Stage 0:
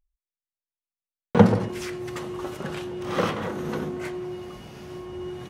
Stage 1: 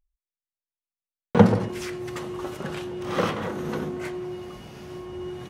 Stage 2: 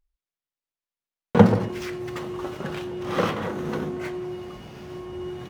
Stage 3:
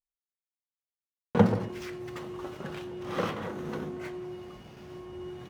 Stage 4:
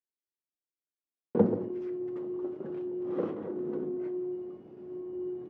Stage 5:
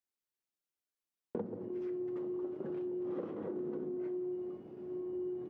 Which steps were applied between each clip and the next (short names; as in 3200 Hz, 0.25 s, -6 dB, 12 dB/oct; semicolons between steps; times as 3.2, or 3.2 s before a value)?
nothing audible
median filter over 5 samples; gain +1 dB
gate with hold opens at -32 dBFS; gain -7 dB
band-pass 340 Hz, Q 2.6; gain +5.5 dB
compressor 20:1, threshold -35 dBFS, peak gain reduction 19.5 dB